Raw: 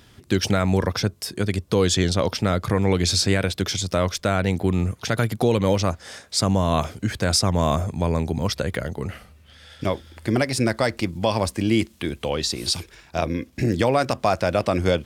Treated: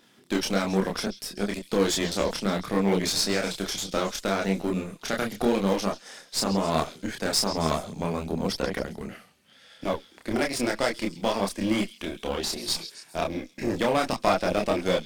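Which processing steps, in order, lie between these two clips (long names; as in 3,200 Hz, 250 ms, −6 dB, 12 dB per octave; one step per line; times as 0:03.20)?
high-pass filter 170 Hz 24 dB per octave
harmonic generator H 3 −17 dB, 8 −25 dB, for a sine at −6.5 dBFS
in parallel at −9 dB: floating-point word with a short mantissa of 2 bits
on the sum: tape wow and flutter 16 cents
multi-voice chorus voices 4, 1.3 Hz, delay 28 ms, depth 3.3 ms
on a send: echo through a band-pass that steps 135 ms, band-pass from 4,200 Hz, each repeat 0.7 octaves, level −11.5 dB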